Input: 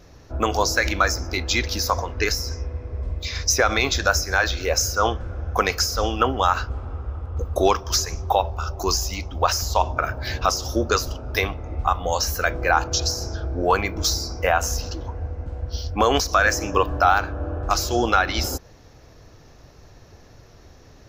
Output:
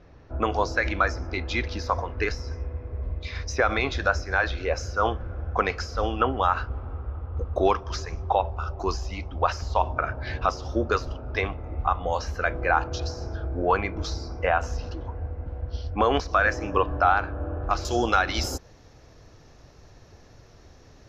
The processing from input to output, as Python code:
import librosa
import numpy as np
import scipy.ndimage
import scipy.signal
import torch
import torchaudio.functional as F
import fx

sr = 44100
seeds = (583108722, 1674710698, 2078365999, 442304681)

y = fx.lowpass(x, sr, hz=fx.steps((0.0, 2700.0), (17.85, 9700.0)), slope=12)
y = y * 10.0 ** (-3.0 / 20.0)